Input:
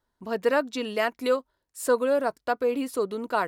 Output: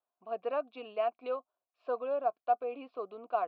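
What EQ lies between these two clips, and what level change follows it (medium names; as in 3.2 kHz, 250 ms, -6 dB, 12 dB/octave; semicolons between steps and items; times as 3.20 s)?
steep low-pass 4.2 kHz 36 dB/octave; dynamic bell 280 Hz, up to +4 dB, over -35 dBFS, Q 0.73; vowel filter a; 0.0 dB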